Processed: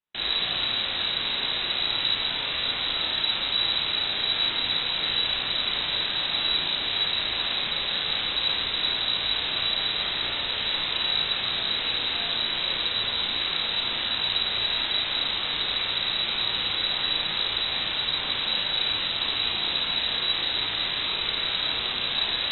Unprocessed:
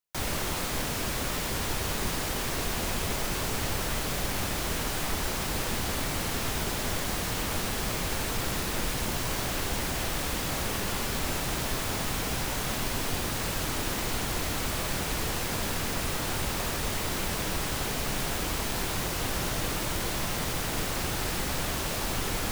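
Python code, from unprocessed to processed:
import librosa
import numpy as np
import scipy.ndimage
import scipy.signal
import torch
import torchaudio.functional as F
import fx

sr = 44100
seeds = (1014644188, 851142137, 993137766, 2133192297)

y = fx.doubler(x, sr, ms=34.0, db=-6.0)
y = fx.room_early_taps(y, sr, ms=(54, 73), db=(-4.5, -4.0))
y = fx.freq_invert(y, sr, carrier_hz=3900)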